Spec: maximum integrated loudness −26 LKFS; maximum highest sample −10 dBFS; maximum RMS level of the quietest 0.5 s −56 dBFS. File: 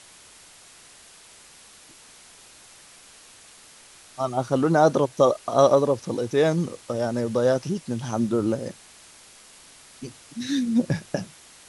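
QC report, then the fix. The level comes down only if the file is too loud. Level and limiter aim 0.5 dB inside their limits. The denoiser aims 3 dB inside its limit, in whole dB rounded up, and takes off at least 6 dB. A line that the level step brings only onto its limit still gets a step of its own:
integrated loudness −23.5 LKFS: out of spec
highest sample −4.5 dBFS: out of spec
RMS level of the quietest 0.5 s −50 dBFS: out of spec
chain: broadband denoise 6 dB, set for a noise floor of −50 dBFS
level −3 dB
brickwall limiter −10.5 dBFS

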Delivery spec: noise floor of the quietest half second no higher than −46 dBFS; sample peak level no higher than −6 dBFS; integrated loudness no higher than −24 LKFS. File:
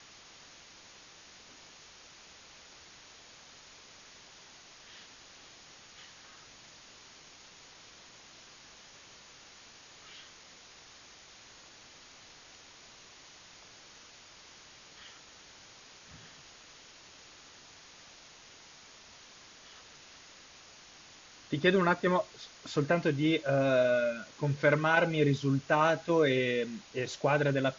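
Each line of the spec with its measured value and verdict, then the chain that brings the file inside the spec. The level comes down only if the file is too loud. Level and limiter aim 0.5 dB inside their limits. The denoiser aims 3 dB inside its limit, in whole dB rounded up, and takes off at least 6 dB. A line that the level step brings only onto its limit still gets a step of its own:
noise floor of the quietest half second −55 dBFS: in spec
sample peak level −11.5 dBFS: in spec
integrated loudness −28.5 LKFS: in spec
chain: no processing needed

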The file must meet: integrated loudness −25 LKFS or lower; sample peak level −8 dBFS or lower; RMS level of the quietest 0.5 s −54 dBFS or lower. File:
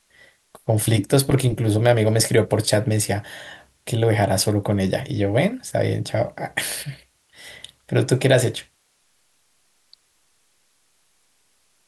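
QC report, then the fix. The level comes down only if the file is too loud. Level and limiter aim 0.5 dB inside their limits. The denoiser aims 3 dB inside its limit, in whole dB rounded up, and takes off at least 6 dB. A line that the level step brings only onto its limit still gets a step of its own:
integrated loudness −20.5 LKFS: out of spec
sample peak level −4.0 dBFS: out of spec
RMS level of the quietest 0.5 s −64 dBFS: in spec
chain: level −5 dB

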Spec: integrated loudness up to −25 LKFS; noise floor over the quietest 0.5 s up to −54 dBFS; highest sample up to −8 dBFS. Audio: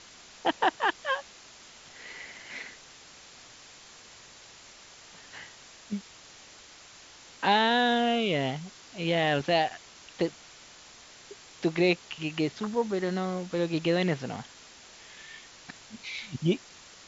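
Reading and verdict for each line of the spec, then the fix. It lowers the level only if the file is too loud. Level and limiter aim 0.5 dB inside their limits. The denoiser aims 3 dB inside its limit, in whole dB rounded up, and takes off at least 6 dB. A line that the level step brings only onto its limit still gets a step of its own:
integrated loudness −29.0 LKFS: in spec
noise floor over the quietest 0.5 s −51 dBFS: out of spec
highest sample −11.0 dBFS: in spec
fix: broadband denoise 6 dB, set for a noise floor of −51 dBFS

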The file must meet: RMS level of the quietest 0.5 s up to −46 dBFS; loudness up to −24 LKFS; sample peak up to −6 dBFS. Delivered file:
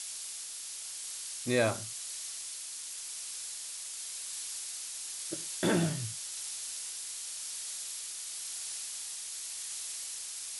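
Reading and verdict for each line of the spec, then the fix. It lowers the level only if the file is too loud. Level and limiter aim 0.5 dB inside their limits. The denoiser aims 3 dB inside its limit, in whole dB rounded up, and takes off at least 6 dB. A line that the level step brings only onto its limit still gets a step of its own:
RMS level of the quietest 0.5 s −42 dBFS: out of spec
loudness −36.0 LKFS: in spec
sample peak −15.0 dBFS: in spec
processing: broadband denoise 7 dB, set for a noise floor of −42 dBFS

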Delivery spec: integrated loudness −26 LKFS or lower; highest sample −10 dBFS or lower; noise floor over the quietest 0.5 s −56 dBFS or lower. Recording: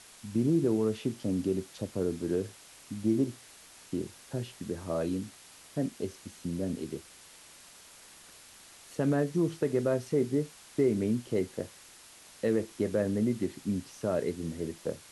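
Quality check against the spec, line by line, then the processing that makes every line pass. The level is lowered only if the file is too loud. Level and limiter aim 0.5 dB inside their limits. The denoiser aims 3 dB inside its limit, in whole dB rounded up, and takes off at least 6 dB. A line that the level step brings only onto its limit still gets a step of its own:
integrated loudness −32.0 LKFS: in spec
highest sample −16.5 dBFS: in spec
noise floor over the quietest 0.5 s −54 dBFS: out of spec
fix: broadband denoise 6 dB, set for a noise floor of −54 dBFS

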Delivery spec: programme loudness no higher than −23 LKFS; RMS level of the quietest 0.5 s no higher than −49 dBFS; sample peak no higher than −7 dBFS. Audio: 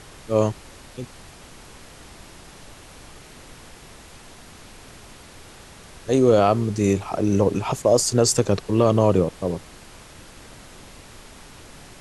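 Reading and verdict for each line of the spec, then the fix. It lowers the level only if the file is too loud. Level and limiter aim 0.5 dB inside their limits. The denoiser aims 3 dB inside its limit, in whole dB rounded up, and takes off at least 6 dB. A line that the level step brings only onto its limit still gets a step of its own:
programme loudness −20.5 LKFS: out of spec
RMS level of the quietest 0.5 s −44 dBFS: out of spec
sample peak −5.5 dBFS: out of spec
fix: broadband denoise 6 dB, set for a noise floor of −44 dBFS
level −3 dB

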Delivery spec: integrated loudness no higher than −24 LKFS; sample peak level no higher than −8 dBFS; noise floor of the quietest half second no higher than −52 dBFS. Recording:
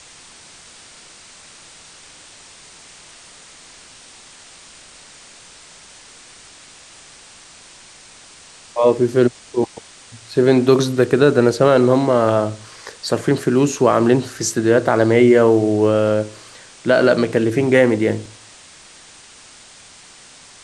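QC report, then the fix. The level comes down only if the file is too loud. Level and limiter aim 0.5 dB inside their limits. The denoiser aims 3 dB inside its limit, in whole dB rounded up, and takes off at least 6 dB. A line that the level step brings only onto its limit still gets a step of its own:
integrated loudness −16.0 LKFS: out of spec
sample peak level −2.0 dBFS: out of spec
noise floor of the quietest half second −44 dBFS: out of spec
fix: level −8.5 dB

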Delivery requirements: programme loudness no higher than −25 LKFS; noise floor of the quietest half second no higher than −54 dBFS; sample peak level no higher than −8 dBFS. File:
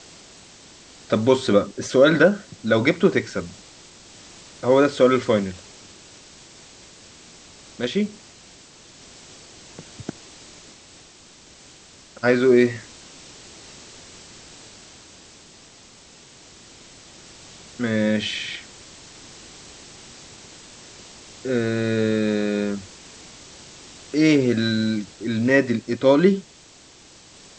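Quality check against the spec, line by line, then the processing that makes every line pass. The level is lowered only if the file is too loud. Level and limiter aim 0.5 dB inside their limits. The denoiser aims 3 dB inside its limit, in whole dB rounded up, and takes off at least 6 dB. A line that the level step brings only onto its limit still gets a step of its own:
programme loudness −20.5 LKFS: out of spec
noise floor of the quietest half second −49 dBFS: out of spec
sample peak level −4.0 dBFS: out of spec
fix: broadband denoise 6 dB, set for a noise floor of −49 dBFS
level −5 dB

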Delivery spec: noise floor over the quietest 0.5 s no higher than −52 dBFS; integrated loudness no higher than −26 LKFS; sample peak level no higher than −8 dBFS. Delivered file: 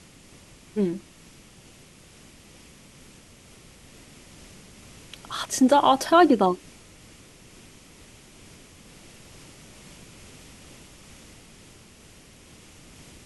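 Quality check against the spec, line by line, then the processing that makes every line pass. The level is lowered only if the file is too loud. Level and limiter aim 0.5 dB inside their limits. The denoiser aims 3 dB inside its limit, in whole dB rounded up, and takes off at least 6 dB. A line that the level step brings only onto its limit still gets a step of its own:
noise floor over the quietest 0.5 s −51 dBFS: out of spec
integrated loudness −21.5 LKFS: out of spec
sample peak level −6.5 dBFS: out of spec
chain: level −5 dB

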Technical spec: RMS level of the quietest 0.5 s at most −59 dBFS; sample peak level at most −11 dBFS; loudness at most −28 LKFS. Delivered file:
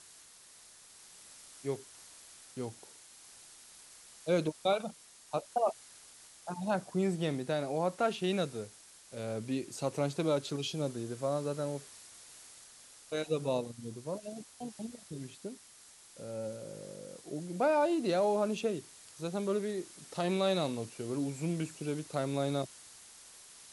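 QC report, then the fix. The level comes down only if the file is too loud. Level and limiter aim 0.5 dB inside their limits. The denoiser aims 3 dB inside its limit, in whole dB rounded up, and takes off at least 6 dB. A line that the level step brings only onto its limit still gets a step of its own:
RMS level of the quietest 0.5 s −57 dBFS: out of spec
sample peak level −18.0 dBFS: in spec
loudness −35.0 LKFS: in spec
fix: broadband denoise 6 dB, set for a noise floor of −57 dBFS

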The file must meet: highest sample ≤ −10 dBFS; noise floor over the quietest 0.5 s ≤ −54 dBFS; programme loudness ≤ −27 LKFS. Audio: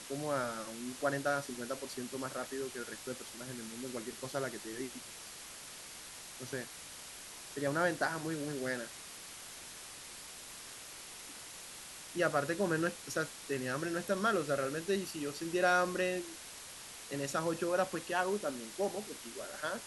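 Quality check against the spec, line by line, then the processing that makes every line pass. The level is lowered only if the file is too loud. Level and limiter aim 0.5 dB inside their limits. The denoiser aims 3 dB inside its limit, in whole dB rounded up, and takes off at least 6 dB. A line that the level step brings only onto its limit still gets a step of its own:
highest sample −17.0 dBFS: in spec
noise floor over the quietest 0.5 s −49 dBFS: out of spec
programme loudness −37.5 LKFS: in spec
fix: broadband denoise 8 dB, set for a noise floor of −49 dBFS

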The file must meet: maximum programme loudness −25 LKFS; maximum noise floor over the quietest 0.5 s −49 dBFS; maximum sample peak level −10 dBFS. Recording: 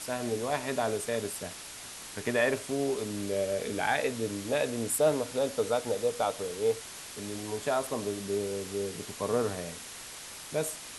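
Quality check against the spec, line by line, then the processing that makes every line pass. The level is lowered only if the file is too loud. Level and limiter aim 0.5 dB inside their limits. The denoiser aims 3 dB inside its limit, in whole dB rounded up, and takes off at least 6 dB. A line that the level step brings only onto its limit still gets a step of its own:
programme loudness −31.5 LKFS: in spec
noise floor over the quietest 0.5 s −44 dBFS: out of spec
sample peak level −14.0 dBFS: in spec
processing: broadband denoise 8 dB, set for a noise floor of −44 dBFS

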